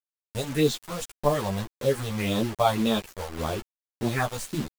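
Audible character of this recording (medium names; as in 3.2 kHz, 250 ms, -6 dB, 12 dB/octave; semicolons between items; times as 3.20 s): phasing stages 4, 1.8 Hz, lowest notch 280–2100 Hz; a quantiser's noise floor 6-bit, dither none; a shimmering, thickened sound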